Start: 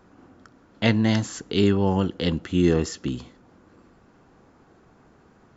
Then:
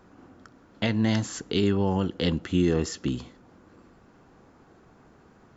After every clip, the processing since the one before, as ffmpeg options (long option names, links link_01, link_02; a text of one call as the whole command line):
ffmpeg -i in.wav -af "alimiter=limit=-13dB:level=0:latency=1:release=206" out.wav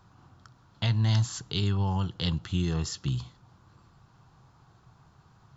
ffmpeg -i in.wav -af "equalizer=frequency=125:width_type=o:width=1:gain=12,equalizer=frequency=250:width_type=o:width=1:gain=-12,equalizer=frequency=500:width_type=o:width=1:gain=-10,equalizer=frequency=1000:width_type=o:width=1:gain=5,equalizer=frequency=2000:width_type=o:width=1:gain=-7,equalizer=frequency=4000:width_type=o:width=1:gain=6,volume=-2.5dB" out.wav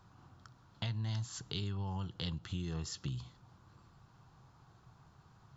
ffmpeg -i in.wav -af "acompressor=threshold=-34dB:ratio=3,volume=-3.5dB" out.wav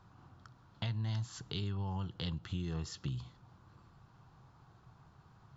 ffmpeg -i in.wav -af "highshelf=frequency=6500:gain=-10.5,volume=1dB" out.wav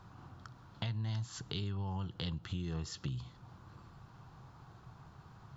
ffmpeg -i in.wav -af "acompressor=threshold=-51dB:ratio=1.5,volume=5.5dB" out.wav